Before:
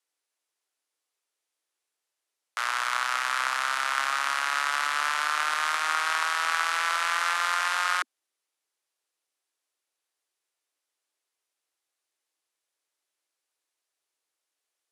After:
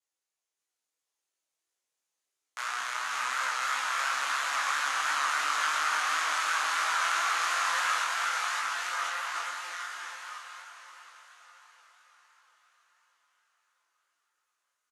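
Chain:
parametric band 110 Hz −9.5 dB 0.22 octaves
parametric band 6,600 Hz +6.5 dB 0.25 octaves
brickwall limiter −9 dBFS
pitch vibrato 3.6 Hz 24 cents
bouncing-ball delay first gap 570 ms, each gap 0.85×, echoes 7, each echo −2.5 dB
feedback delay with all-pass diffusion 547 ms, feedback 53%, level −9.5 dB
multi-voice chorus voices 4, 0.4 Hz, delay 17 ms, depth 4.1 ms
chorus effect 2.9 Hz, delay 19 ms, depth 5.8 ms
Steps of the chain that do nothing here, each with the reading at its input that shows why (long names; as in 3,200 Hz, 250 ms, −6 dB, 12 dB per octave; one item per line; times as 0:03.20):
parametric band 110 Hz: nothing at its input below 270 Hz
brickwall limiter −9 dBFS: peak of its input −11.0 dBFS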